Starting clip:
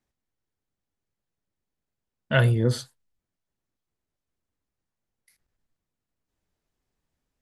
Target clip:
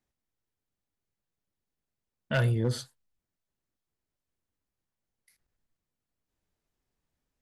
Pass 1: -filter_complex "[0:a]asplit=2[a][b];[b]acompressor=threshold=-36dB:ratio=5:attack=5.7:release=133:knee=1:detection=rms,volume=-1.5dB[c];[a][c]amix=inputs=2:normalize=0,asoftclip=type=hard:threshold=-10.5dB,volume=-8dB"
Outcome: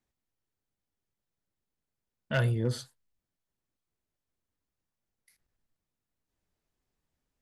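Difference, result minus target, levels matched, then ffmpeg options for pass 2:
compressor: peak gain reduction +9 dB
-filter_complex "[0:a]asplit=2[a][b];[b]acompressor=threshold=-24.5dB:ratio=5:attack=5.7:release=133:knee=1:detection=rms,volume=-1.5dB[c];[a][c]amix=inputs=2:normalize=0,asoftclip=type=hard:threshold=-10.5dB,volume=-8dB"

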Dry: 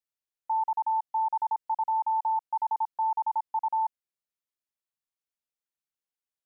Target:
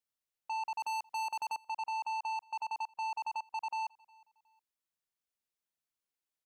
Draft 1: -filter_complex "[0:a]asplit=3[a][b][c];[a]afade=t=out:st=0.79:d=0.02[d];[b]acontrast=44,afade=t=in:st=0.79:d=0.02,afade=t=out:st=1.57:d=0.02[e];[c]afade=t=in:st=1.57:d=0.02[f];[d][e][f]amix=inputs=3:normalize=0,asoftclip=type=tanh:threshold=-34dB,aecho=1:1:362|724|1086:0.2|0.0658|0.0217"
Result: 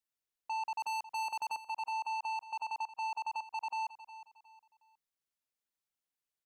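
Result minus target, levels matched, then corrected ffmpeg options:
echo-to-direct +11.5 dB
-filter_complex "[0:a]asplit=3[a][b][c];[a]afade=t=out:st=0.79:d=0.02[d];[b]acontrast=44,afade=t=in:st=0.79:d=0.02,afade=t=out:st=1.57:d=0.02[e];[c]afade=t=in:st=1.57:d=0.02[f];[d][e][f]amix=inputs=3:normalize=0,asoftclip=type=tanh:threshold=-34dB,aecho=1:1:362|724:0.0531|0.0175"

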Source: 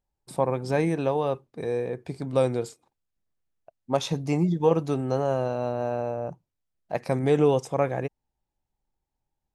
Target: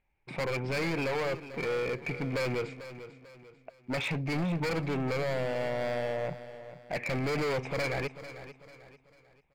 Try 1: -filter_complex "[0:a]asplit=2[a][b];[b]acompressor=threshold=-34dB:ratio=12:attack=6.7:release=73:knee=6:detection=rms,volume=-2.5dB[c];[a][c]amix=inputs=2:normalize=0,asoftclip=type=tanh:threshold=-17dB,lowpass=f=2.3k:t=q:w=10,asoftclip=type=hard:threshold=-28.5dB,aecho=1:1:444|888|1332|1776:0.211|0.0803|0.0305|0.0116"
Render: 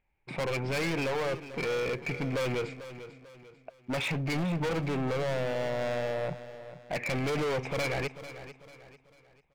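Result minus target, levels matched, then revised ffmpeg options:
compressor: peak gain reduction -10.5 dB; soft clip: distortion -6 dB
-filter_complex "[0:a]asplit=2[a][b];[b]acompressor=threshold=-45.5dB:ratio=12:attack=6.7:release=73:knee=6:detection=rms,volume=-2.5dB[c];[a][c]amix=inputs=2:normalize=0,asoftclip=type=tanh:threshold=-25dB,lowpass=f=2.3k:t=q:w=10,asoftclip=type=hard:threshold=-28.5dB,aecho=1:1:444|888|1332|1776:0.211|0.0803|0.0305|0.0116"

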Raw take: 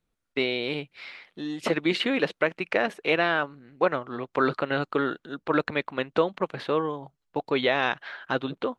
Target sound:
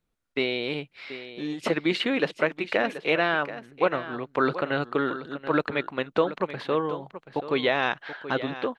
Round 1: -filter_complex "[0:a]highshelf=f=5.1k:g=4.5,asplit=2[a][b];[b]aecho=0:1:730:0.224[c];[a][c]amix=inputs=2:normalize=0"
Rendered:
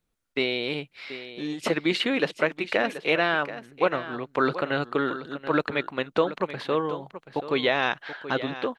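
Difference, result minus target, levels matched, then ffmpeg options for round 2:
8000 Hz band +4.0 dB
-filter_complex "[0:a]highshelf=f=5.1k:g=-2,asplit=2[a][b];[b]aecho=0:1:730:0.224[c];[a][c]amix=inputs=2:normalize=0"

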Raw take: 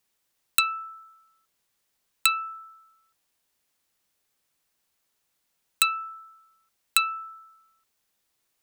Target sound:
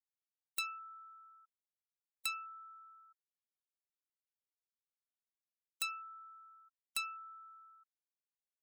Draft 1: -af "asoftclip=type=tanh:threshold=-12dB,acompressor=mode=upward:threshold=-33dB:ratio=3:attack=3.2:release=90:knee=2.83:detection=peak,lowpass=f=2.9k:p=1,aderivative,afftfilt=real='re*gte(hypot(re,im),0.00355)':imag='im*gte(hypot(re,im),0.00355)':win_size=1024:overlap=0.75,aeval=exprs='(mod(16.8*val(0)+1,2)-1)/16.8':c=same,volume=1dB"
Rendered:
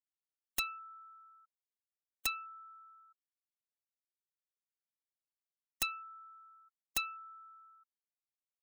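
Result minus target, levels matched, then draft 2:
soft clip: distortion -7 dB
-af "asoftclip=type=tanh:threshold=-21dB,acompressor=mode=upward:threshold=-33dB:ratio=3:attack=3.2:release=90:knee=2.83:detection=peak,lowpass=f=2.9k:p=1,aderivative,afftfilt=real='re*gte(hypot(re,im),0.00355)':imag='im*gte(hypot(re,im),0.00355)':win_size=1024:overlap=0.75,aeval=exprs='(mod(16.8*val(0)+1,2)-1)/16.8':c=same,volume=1dB"

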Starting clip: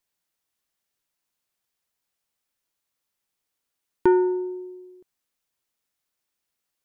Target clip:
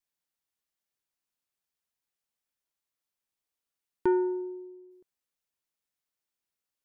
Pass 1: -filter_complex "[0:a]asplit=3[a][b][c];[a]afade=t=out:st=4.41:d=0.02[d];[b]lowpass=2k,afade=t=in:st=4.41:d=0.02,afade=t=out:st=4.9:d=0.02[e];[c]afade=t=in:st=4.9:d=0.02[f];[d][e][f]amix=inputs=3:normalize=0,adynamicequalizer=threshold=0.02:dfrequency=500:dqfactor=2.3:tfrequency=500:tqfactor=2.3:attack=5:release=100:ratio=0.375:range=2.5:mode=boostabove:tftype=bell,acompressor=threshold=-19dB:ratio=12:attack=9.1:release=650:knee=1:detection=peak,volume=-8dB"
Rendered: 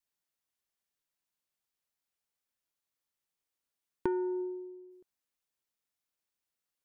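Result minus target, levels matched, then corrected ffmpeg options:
compressor: peak gain reduction +8 dB
-filter_complex "[0:a]asplit=3[a][b][c];[a]afade=t=out:st=4.41:d=0.02[d];[b]lowpass=2k,afade=t=in:st=4.41:d=0.02,afade=t=out:st=4.9:d=0.02[e];[c]afade=t=in:st=4.9:d=0.02[f];[d][e][f]amix=inputs=3:normalize=0,adynamicequalizer=threshold=0.02:dfrequency=500:dqfactor=2.3:tfrequency=500:tqfactor=2.3:attack=5:release=100:ratio=0.375:range=2.5:mode=boostabove:tftype=bell,volume=-8dB"

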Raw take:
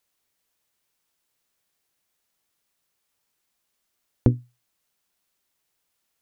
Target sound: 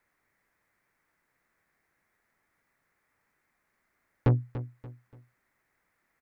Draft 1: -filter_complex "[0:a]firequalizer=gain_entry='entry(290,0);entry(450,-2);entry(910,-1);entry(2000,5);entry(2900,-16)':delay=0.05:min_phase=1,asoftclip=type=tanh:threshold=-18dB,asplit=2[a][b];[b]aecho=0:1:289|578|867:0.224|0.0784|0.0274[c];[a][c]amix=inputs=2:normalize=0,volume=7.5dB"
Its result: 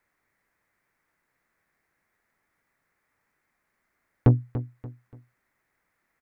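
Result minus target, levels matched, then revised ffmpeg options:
soft clip: distortion -4 dB
-filter_complex "[0:a]firequalizer=gain_entry='entry(290,0);entry(450,-2);entry(910,-1);entry(2000,5);entry(2900,-16)':delay=0.05:min_phase=1,asoftclip=type=tanh:threshold=-25.5dB,asplit=2[a][b];[b]aecho=0:1:289|578|867:0.224|0.0784|0.0274[c];[a][c]amix=inputs=2:normalize=0,volume=7.5dB"

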